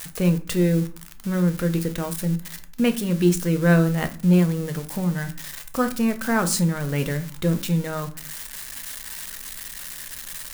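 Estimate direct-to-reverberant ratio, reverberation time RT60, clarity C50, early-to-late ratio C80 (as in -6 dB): 7.5 dB, 0.40 s, 15.0 dB, 19.5 dB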